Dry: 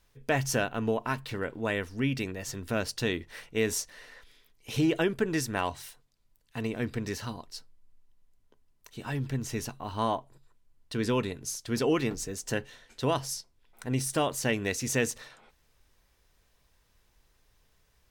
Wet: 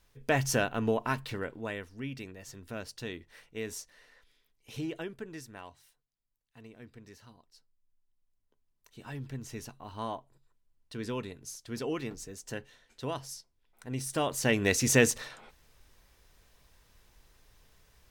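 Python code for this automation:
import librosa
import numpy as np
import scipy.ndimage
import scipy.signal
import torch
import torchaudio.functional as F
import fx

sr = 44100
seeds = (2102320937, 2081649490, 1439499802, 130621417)

y = fx.gain(x, sr, db=fx.line((1.22, 0.0), (1.9, -10.0), (4.75, -10.0), (5.83, -18.5), (7.48, -18.5), (9.02, -8.0), (13.84, -8.0), (14.74, 5.0)))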